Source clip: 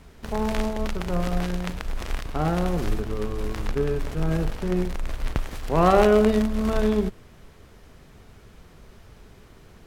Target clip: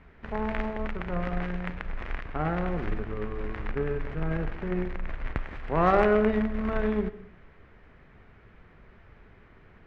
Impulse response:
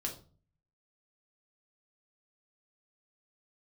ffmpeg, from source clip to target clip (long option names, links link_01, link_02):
-filter_complex "[0:a]lowpass=frequency=2000:width_type=q:width=2,aeval=exprs='0.794*(cos(1*acos(clip(val(0)/0.794,-1,1)))-cos(1*PI/2))+0.0158*(cos(8*acos(clip(val(0)/0.794,-1,1)))-cos(8*PI/2))':channel_layout=same,asplit=2[link_01][link_02];[1:a]atrim=start_sample=2205,adelay=127[link_03];[link_02][link_03]afir=irnorm=-1:irlink=0,volume=-18dB[link_04];[link_01][link_04]amix=inputs=2:normalize=0,volume=-5.5dB"